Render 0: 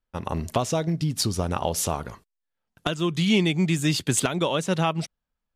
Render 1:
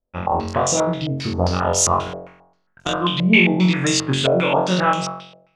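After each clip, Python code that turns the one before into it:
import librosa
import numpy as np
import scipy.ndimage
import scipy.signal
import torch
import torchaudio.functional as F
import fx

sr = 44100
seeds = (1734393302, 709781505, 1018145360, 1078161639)

y = fx.spec_box(x, sr, start_s=3.6, length_s=0.31, low_hz=410.0, high_hz=1500.0, gain_db=10)
y = fx.room_flutter(y, sr, wall_m=3.8, rt60_s=0.73)
y = fx.filter_held_lowpass(y, sr, hz=7.5, low_hz=580.0, high_hz=6800.0)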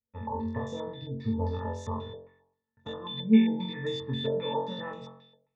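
y = fx.octave_resonator(x, sr, note='A', decay_s=0.14)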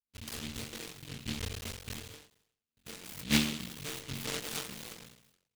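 y = fx.cycle_switch(x, sr, every=3, mode='muted')
y = fx.noise_mod_delay(y, sr, seeds[0], noise_hz=3000.0, depth_ms=0.44)
y = y * librosa.db_to_amplitude(-6.5)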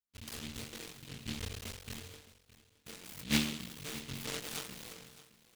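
y = x + 10.0 ** (-17.5 / 20.0) * np.pad(x, (int(616 * sr / 1000.0), 0))[:len(x)]
y = y * librosa.db_to_amplitude(-3.0)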